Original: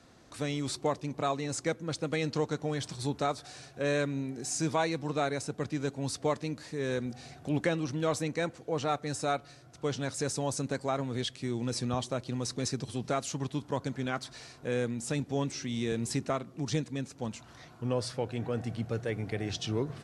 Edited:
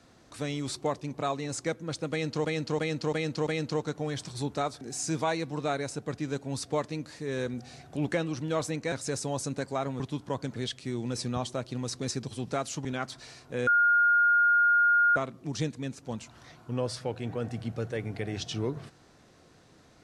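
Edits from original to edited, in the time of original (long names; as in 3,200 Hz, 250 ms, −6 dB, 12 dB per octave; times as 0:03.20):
0:02.11–0:02.45: repeat, 5 plays
0:03.45–0:04.33: remove
0:08.44–0:10.05: remove
0:13.42–0:13.98: move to 0:11.13
0:14.80–0:16.29: beep over 1,420 Hz −19 dBFS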